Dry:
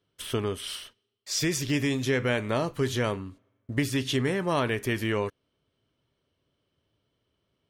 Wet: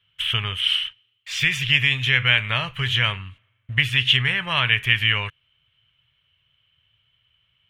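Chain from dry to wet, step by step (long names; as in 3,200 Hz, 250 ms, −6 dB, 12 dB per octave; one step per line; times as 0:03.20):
drawn EQ curve 130 Hz 0 dB, 300 Hz −24 dB, 3,000 Hz +14 dB, 4,700 Hz −11 dB
level +6 dB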